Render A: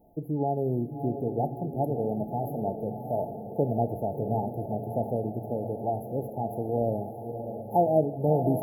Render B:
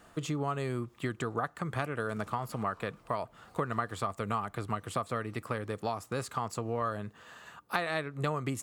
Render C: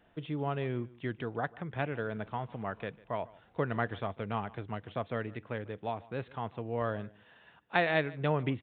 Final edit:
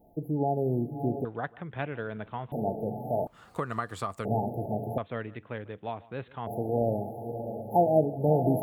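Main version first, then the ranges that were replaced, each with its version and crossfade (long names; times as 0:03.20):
A
0:01.25–0:02.52: punch in from C
0:03.27–0:04.25: punch in from B
0:04.98–0:06.47: punch in from C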